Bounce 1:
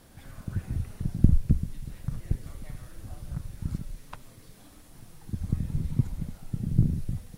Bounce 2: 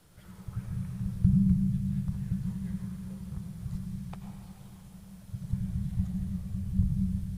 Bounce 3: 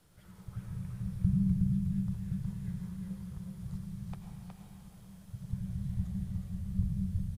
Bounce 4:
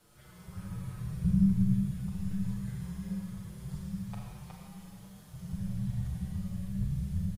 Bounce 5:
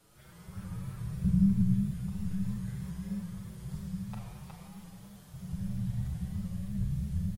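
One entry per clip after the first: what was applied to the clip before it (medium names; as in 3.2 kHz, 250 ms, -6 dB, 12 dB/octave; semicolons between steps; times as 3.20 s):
frequency shift -210 Hz; on a send at -3.5 dB: reverberation RT60 3.3 s, pre-delay 81 ms; on the sum: trim -5 dB
delay 366 ms -4 dB; trim -5 dB
bass shelf 170 Hz -6 dB; Schroeder reverb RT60 1.1 s, combs from 30 ms, DRR 0 dB; endless flanger 6.6 ms +1.2 Hz; trim +6 dB
vibrato with a chosen wave saw up 3.1 Hz, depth 100 cents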